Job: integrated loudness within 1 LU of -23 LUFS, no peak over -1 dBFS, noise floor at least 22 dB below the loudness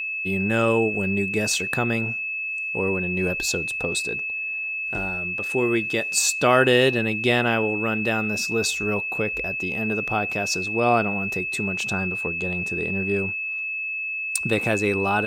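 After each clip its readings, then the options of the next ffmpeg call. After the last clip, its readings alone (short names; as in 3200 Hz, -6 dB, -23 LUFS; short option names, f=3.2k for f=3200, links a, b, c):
steady tone 2600 Hz; tone level -26 dBFS; loudness -23.0 LUFS; peak -4.0 dBFS; loudness target -23.0 LUFS
-> -af "bandreject=f=2.6k:w=30"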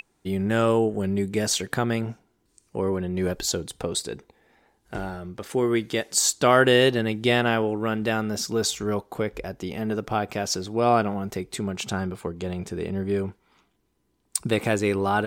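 steady tone none; loudness -25.0 LUFS; peak -4.5 dBFS; loudness target -23.0 LUFS
-> -af "volume=2dB"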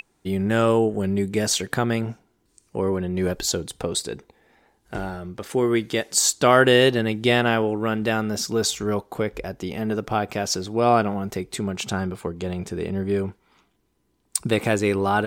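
loudness -23.0 LUFS; peak -2.5 dBFS; noise floor -68 dBFS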